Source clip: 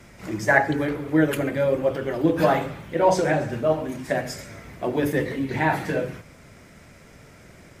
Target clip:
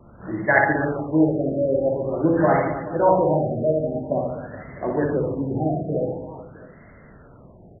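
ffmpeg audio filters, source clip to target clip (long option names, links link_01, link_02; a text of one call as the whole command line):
ffmpeg -i in.wav -af "aecho=1:1:60|144|261.6|426.2|656.7:0.631|0.398|0.251|0.158|0.1,afftfilt=real='re*lt(b*sr/1024,730*pow(2200/730,0.5+0.5*sin(2*PI*0.47*pts/sr)))':imag='im*lt(b*sr/1024,730*pow(2200/730,0.5+0.5*sin(2*PI*0.47*pts/sr)))':win_size=1024:overlap=0.75" out.wav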